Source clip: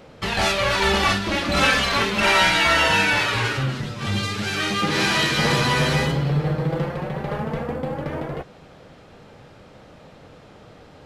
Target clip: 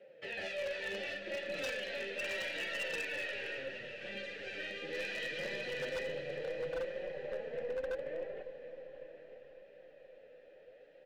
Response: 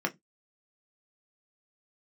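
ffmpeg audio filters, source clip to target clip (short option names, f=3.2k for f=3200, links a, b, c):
-filter_complex "[0:a]flanger=delay=5:depth=7.5:regen=16:speed=0.72:shape=sinusoidal,acrossover=split=360|3000[a][b][c];[b]acompressor=threshold=-31dB:ratio=3[d];[a][d][c]amix=inputs=3:normalize=0,asplit=3[e][f][g];[e]bandpass=f=530:t=q:w=8,volume=0dB[h];[f]bandpass=f=1.84k:t=q:w=8,volume=-6dB[i];[g]bandpass=f=2.48k:t=q:w=8,volume=-9dB[j];[h][i][j]amix=inputs=3:normalize=0,asplit=2[k][l];[l]aecho=0:1:951:0.188[m];[k][m]amix=inputs=2:normalize=0,aeval=exprs='0.0668*(cos(1*acos(clip(val(0)/0.0668,-1,1)))-cos(1*PI/2))+0.00596*(cos(2*acos(clip(val(0)/0.0668,-1,1)))-cos(2*PI/2))':c=same,asplit=2[n][o];[o]aecho=0:1:555|1110|1665|2220|2775|3330:0.237|0.133|0.0744|0.0416|0.0233|0.0131[p];[n][p]amix=inputs=2:normalize=0,aeval=exprs='0.0266*(abs(mod(val(0)/0.0266+3,4)-2)-1)':c=same,asubboost=boost=4.5:cutoff=52"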